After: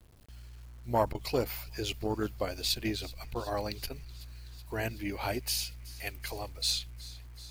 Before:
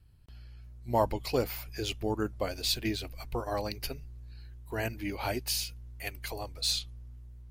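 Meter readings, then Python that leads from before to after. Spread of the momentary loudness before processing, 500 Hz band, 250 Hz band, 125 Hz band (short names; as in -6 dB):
19 LU, -1.0 dB, -1.0 dB, -1.0 dB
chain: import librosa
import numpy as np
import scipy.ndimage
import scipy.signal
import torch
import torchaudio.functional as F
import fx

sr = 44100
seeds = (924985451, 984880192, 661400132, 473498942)

y = fx.quant_dither(x, sr, seeds[0], bits=10, dither='none')
y = fx.echo_wet_highpass(y, sr, ms=376, feedback_pct=77, hz=2500.0, wet_db=-18.5)
y = fx.transformer_sat(y, sr, knee_hz=400.0)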